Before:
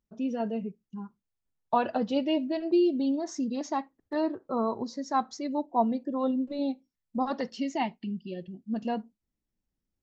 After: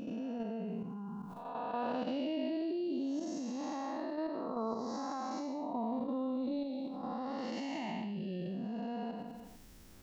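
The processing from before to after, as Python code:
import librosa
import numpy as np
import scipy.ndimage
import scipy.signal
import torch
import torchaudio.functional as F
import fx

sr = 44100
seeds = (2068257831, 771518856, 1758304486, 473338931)

y = fx.spec_blur(x, sr, span_ms=323.0)
y = fx.low_shelf(y, sr, hz=500.0, db=-4.0)
y = fx.level_steps(y, sr, step_db=12)
y = fx.echo_feedback(y, sr, ms=83, feedback_pct=60, wet_db=-24)
y = fx.env_flatten(y, sr, amount_pct=70)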